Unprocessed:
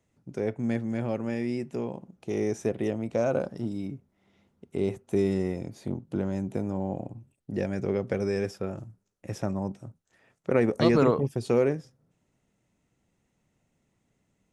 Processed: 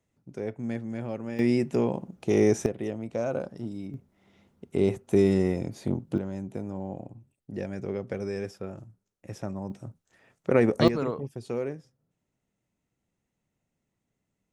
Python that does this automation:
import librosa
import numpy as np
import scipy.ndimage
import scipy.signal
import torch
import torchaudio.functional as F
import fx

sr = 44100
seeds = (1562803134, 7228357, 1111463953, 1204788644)

y = fx.gain(x, sr, db=fx.steps((0.0, -4.0), (1.39, 7.0), (2.66, -3.5), (3.94, 4.0), (6.18, -4.5), (9.7, 2.0), (10.88, -8.0)))